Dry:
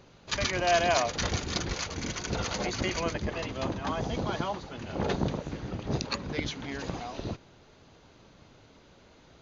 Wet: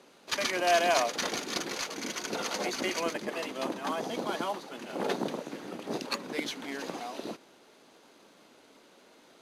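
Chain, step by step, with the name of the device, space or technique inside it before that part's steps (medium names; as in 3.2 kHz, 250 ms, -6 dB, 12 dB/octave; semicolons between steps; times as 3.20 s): early wireless headset (high-pass 230 Hz 24 dB/octave; CVSD coder 64 kbps)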